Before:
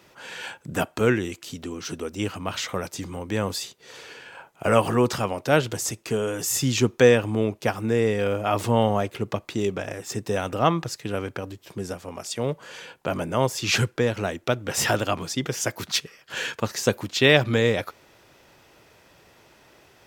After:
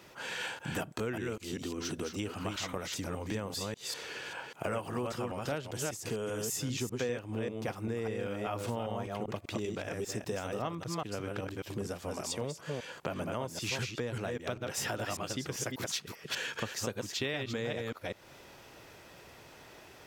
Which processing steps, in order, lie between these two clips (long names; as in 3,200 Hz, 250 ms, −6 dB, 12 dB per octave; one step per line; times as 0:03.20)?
delay that plays each chunk backwards 197 ms, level −4 dB
downward compressor 5 to 1, threshold −34 dBFS, peak gain reduction 22 dB